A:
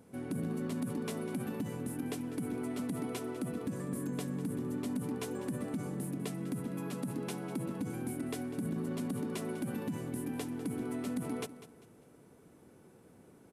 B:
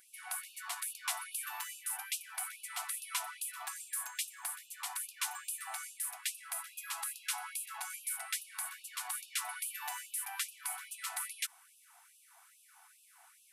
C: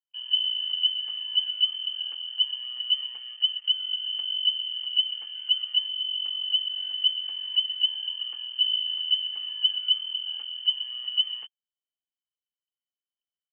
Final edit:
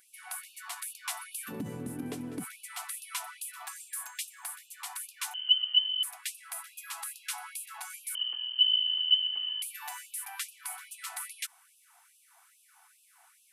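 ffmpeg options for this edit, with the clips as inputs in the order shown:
-filter_complex "[2:a]asplit=2[a][b];[1:a]asplit=4[c][d][e][f];[c]atrim=end=1.53[g];[0:a]atrim=start=1.47:end=2.45[h];[d]atrim=start=2.39:end=5.342[i];[a]atrim=start=5.338:end=6.032[j];[e]atrim=start=6.028:end=8.152[k];[b]atrim=start=8.148:end=9.622[l];[f]atrim=start=9.618[m];[g][h]acrossfade=d=0.06:c1=tri:c2=tri[n];[n][i]acrossfade=d=0.06:c1=tri:c2=tri[o];[o][j]acrossfade=d=0.004:c1=hsin:c2=hsin[p];[p][k]acrossfade=d=0.004:c1=hsin:c2=hsin[q];[q][l]acrossfade=d=0.004:c1=hsin:c2=hsin[r];[r][m]acrossfade=d=0.004:c1=hsin:c2=hsin"

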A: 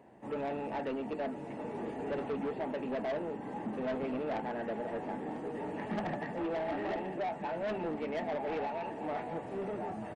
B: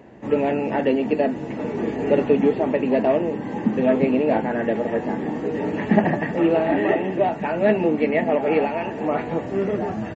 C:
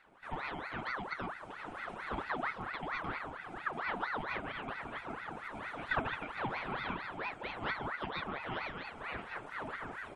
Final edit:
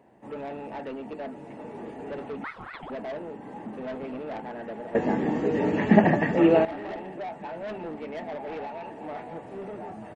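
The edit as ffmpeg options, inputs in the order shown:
-filter_complex "[0:a]asplit=3[a][b][c];[a]atrim=end=2.442[d];[2:a]atrim=start=2.438:end=2.902[e];[b]atrim=start=2.898:end=4.952[f];[1:a]atrim=start=4.948:end=6.652[g];[c]atrim=start=6.648[h];[d][e]acrossfade=d=0.004:c1=hsin:c2=hsin[i];[i][f]acrossfade=d=0.004:c1=hsin:c2=hsin[j];[j][g]acrossfade=d=0.004:c1=hsin:c2=hsin[k];[k][h]acrossfade=d=0.004:c1=hsin:c2=hsin"

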